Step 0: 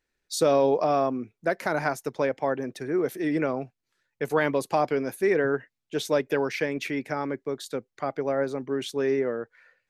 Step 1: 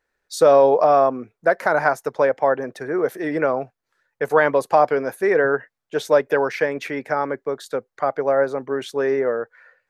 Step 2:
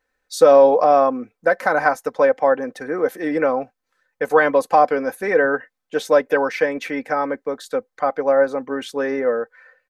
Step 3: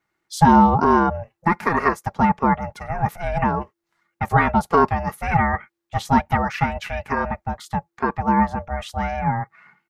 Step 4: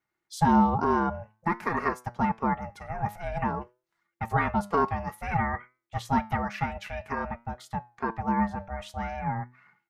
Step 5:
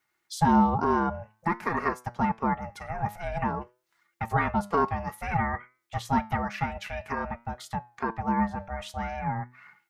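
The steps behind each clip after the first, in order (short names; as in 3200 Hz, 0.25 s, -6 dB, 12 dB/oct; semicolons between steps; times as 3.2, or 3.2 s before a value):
band shelf 900 Hz +9 dB 2.3 oct
comb 3.9 ms, depth 58%
ring modulator 340 Hz; gain +1 dB
flange 0.52 Hz, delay 7.8 ms, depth 2.4 ms, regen +85%; gain -4 dB
mismatched tape noise reduction encoder only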